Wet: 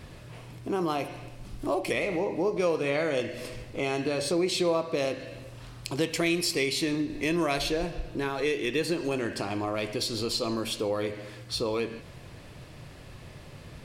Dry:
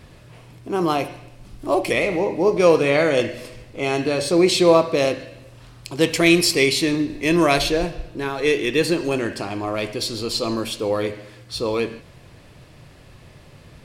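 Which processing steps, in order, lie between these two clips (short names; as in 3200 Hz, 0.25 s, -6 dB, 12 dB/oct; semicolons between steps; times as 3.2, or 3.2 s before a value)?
compressor 2.5:1, threshold -29 dBFS, peak gain reduction 13 dB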